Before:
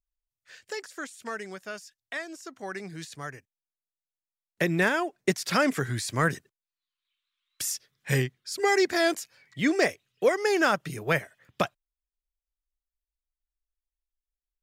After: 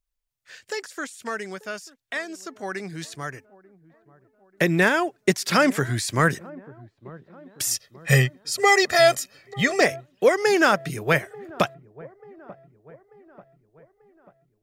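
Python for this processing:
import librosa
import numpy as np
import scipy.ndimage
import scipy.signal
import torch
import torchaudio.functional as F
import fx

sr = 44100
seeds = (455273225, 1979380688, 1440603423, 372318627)

y = fx.comb(x, sr, ms=1.6, depth=0.9, at=(7.71, 9.81))
y = fx.echo_wet_lowpass(y, sr, ms=889, feedback_pct=50, hz=930.0, wet_db=-20.0)
y = y * 10.0 ** (5.0 / 20.0)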